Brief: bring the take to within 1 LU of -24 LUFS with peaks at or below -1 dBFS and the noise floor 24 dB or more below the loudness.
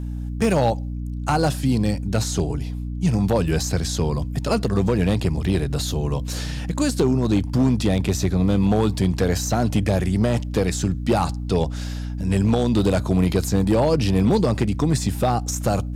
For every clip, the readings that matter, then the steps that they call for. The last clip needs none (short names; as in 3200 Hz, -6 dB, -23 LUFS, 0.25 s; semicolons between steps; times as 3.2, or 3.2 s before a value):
clipped 1.0%; flat tops at -11.5 dBFS; hum 60 Hz; harmonics up to 300 Hz; hum level -26 dBFS; loudness -21.5 LUFS; peak -11.5 dBFS; loudness target -24.0 LUFS
-> clip repair -11.5 dBFS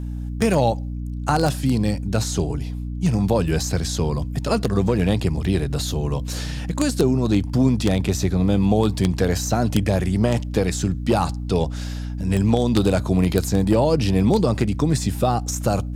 clipped 0.0%; hum 60 Hz; harmonics up to 300 Hz; hum level -26 dBFS
-> notches 60/120/180/240/300 Hz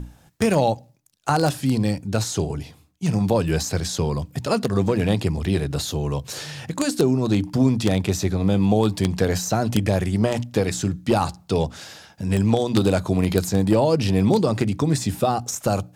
hum none; loudness -22.0 LUFS; peak -2.0 dBFS; loudness target -24.0 LUFS
-> gain -2 dB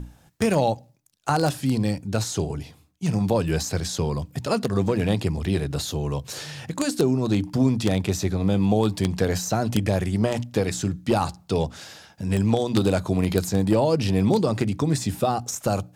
loudness -24.0 LUFS; peak -4.0 dBFS; noise floor -56 dBFS